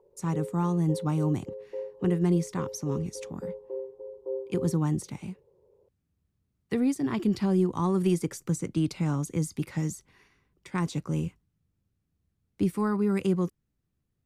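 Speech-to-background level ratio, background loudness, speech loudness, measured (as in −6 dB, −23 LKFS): 10.0 dB, −39.0 LKFS, −29.0 LKFS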